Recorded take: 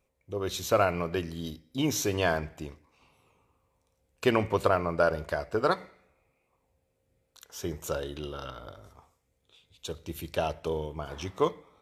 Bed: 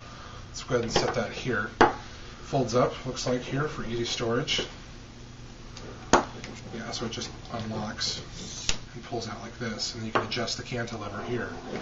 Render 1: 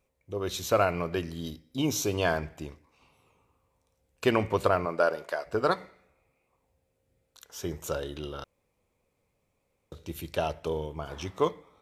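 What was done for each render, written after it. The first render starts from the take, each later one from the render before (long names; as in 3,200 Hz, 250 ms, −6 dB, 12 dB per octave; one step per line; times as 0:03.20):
0:01.78–0:02.25: parametric band 1,800 Hz −13 dB 0.28 octaves
0:04.85–0:05.45: high-pass filter 210 Hz → 490 Hz
0:08.44–0:09.92: fill with room tone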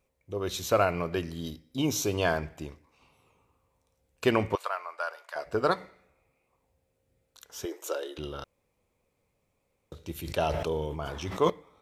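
0:04.55–0:05.36: four-pole ladder high-pass 700 Hz, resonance 20%
0:07.65–0:08.18: Chebyshev high-pass filter 320 Hz, order 5
0:10.14–0:11.50: level that may fall only so fast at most 32 dB per second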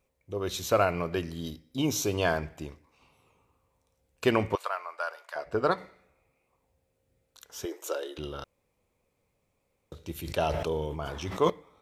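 0:05.36–0:05.78: high-shelf EQ 4,700 Hz −7.5 dB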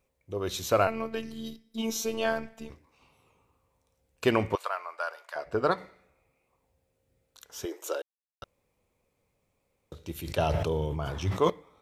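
0:00.87–0:02.70: phases set to zero 224 Hz
0:08.02–0:08.42: silence
0:10.38–0:11.40: parametric band 110 Hz +12.5 dB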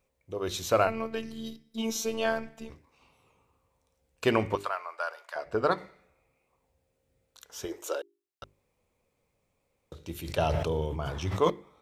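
parametric band 12,000 Hz −3.5 dB 0.29 octaves
mains-hum notches 50/100/150/200/250/300/350/400 Hz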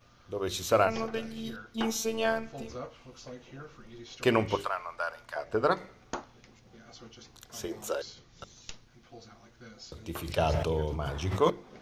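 mix in bed −17 dB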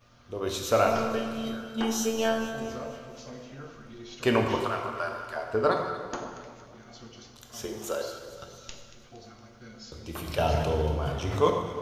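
on a send: delay that swaps between a low-pass and a high-pass 116 ms, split 1,100 Hz, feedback 73%, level −11 dB
on the sum: dense smooth reverb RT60 1.5 s, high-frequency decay 0.8×, DRR 3 dB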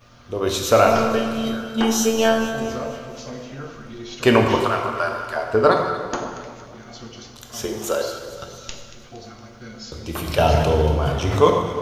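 level +9 dB
brickwall limiter −2 dBFS, peak gain reduction 1.5 dB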